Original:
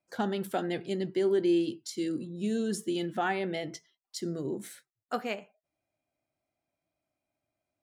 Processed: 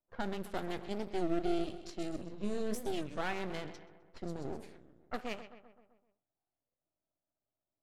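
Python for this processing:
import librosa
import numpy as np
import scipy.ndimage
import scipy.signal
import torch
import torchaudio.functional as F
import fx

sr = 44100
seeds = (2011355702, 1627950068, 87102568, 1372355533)

y = fx.echo_feedback(x, sr, ms=129, feedback_pct=59, wet_db=-13.0)
y = np.maximum(y, 0.0)
y = fx.doubler(y, sr, ms=20.0, db=-7, at=(2.28, 3.04))
y = fx.env_lowpass(y, sr, base_hz=1100.0, full_db=-30.0)
y = fx.record_warp(y, sr, rpm=33.33, depth_cents=250.0)
y = F.gain(torch.from_numpy(y), -3.5).numpy()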